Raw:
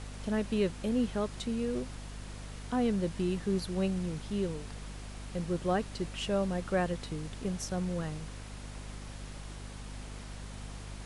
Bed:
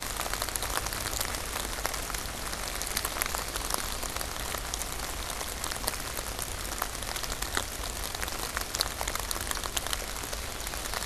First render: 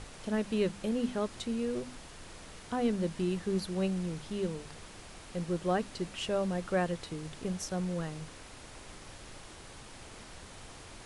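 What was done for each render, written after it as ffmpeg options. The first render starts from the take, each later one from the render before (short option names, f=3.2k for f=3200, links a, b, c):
-af "bandreject=f=50:t=h:w=6,bandreject=f=100:t=h:w=6,bandreject=f=150:t=h:w=6,bandreject=f=200:t=h:w=6,bandreject=f=250:t=h:w=6"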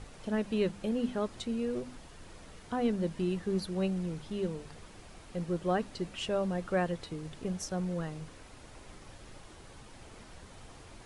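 -af "afftdn=nr=6:nf=-50"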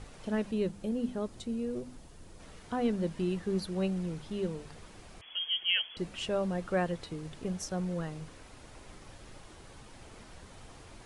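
-filter_complex "[0:a]asettb=1/sr,asplit=3[a][b][c];[a]atrim=end=0.514[d];[b]atrim=start=0.51:end=2.4,asetpts=PTS-STARTPTS,afade=t=in:d=0.004:c=qsin,afade=t=out:st=1.886:d=0.004:c=qsin,equalizer=f=1.9k:w=0.38:g=-7.5[e];[c]atrim=start=2.396[f];[d][e]acrossfade=d=0.004:c1=hsin:c2=qsin[g];[g][f]acrossfade=d=0.004:c1=qsin:c2=hsin,asettb=1/sr,asplit=3[h][i][j];[h]atrim=end=5.214[k];[i]atrim=start=5.21:end=5.97,asetpts=PTS-STARTPTS,afade=t=in:d=0.004:c=qsin,afade=t=out:st=0.756:d=0.004:c=qsin,lowpass=f=2.9k:t=q:w=0.5098,lowpass=f=2.9k:t=q:w=0.6013,lowpass=f=2.9k:t=q:w=0.9,lowpass=f=2.9k:t=q:w=2.563,afreqshift=-3400[l];[j]atrim=start=5.966[m];[k][l]acrossfade=d=0.004:c1=hsin:c2=qsin[n];[n][m]acrossfade=d=0.004:c1=qsin:c2=hsin"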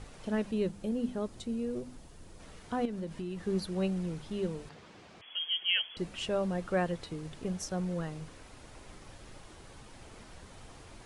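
-filter_complex "[0:a]asettb=1/sr,asplit=3[a][b][c];[a]atrim=end=2.854[d];[b]atrim=start=2.85:end=3.47,asetpts=PTS-STARTPTS,afade=t=in:d=0.004:c=qsin,afade=t=out:st=0.616:d=0.004:c=qsin,acompressor=threshold=-35dB:ratio=4:attack=3.2:release=140:knee=1:detection=peak[e];[c]atrim=start=3.466[f];[d][e]acrossfade=d=0.004:c1=hsin:c2=qsin[g];[g][f]acrossfade=d=0.004:c1=qsin:c2=hsin,asettb=1/sr,asplit=3[h][i][j];[h]atrim=end=4.694[k];[i]atrim=start=4.69:end=5.75,asetpts=PTS-STARTPTS,afade=t=in:d=0.004:c=qsin,afade=t=out:st=1.056:d=0.004:c=qsin,highpass=130,lowpass=5.1k[l];[j]atrim=start=5.746[m];[k][l]acrossfade=d=0.004:c1=hsin:c2=qsin[n];[n][m]acrossfade=d=0.004:c1=qsin:c2=hsin"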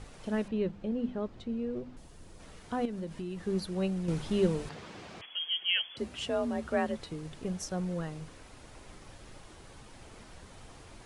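-filter_complex "[0:a]asettb=1/sr,asplit=3[a][b][c];[a]atrim=end=0.484[d];[b]atrim=start=0.48:end=1.97,asetpts=PTS-STARTPTS,afade=t=in:d=0.004:c=qsin,afade=t=out:st=1.486:d=0.004:c=qsin,lowpass=3.2k[e];[c]atrim=start=1.966[f];[d][e]acrossfade=d=0.004:c1=hsin:c2=qsin[g];[g][f]acrossfade=d=0.004:c1=qsin:c2=hsin,asettb=1/sr,asplit=3[h][i][j];[h]atrim=end=4.084[k];[i]atrim=start=4.08:end=5.26,asetpts=PTS-STARTPTS,afade=t=in:d=0.004:c=qsin,afade=t=out:st=1.176:d=0.004:c=qsin,acontrast=86[l];[j]atrim=start=5.256[m];[k][l]acrossfade=d=0.004:c1=hsin:c2=qsin[n];[n][m]acrossfade=d=0.004:c1=qsin:c2=hsin,asettb=1/sr,asplit=3[o][p][q];[o]atrim=end=5.844[r];[p]atrim=start=5.84:end=6.98,asetpts=PTS-STARTPTS,afade=t=in:d=0.004:c=qsin,afade=t=out:st=1.136:d=0.004:c=qsin,afreqshift=45[s];[q]atrim=start=6.976[t];[r][s]acrossfade=d=0.004:c1=hsin:c2=qsin[u];[u][t]acrossfade=d=0.004:c1=qsin:c2=hsin"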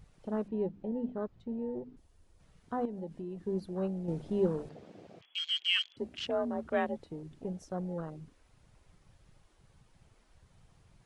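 -af "afwtdn=0.0112,lowshelf=f=130:g=-11"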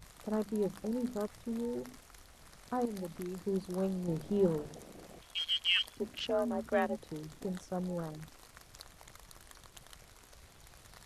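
-filter_complex "[1:a]volume=-23dB[a];[0:a][a]amix=inputs=2:normalize=0"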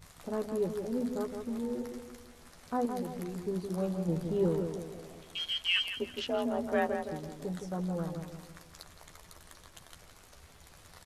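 -filter_complex "[0:a]asplit=2[a][b];[b]adelay=12,volume=-6.5dB[c];[a][c]amix=inputs=2:normalize=0,asplit=2[d][e];[e]adelay=165,lowpass=f=2k:p=1,volume=-6dB,asplit=2[f][g];[g]adelay=165,lowpass=f=2k:p=1,volume=0.46,asplit=2[h][i];[i]adelay=165,lowpass=f=2k:p=1,volume=0.46,asplit=2[j][k];[k]adelay=165,lowpass=f=2k:p=1,volume=0.46,asplit=2[l][m];[m]adelay=165,lowpass=f=2k:p=1,volume=0.46,asplit=2[n][o];[o]adelay=165,lowpass=f=2k:p=1,volume=0.46[p];[d][f][h][j][l][n][p]amix=inputs=7:normalize=0"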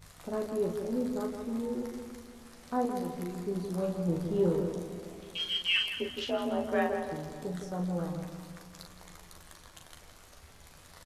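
-filter_complex "[0:a]asplit=2[a][b];[b]adelay=40,volume=-5.5dB[c];[a][c]amix=inputs=2:normalize=0,asplit=2[d][e];[e]adelay=291,lowpass=f=3.3k:p=1,volume=-15.5dB,asplit=2[f][g];[g]adelay=291,lowpass=f=3.3k:p=1,volume=0.54,asplit=2[h][i];[i]adelay=291,lowpass=f=3.3k:p=1,volume=0.54,asplit=2[j][k];[k]adelay=291,lowpass=f=3.3k:p=1,volume=0.54,asplit=2[l][m];[m]adelay=291,lowpass=f=3.3k:p=1,volume=0.54[n];[d][f][h][j][l][n]amix=inputs=6:normalize=0"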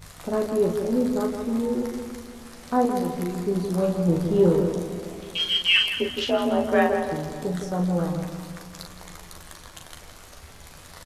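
-af "volume=9dB"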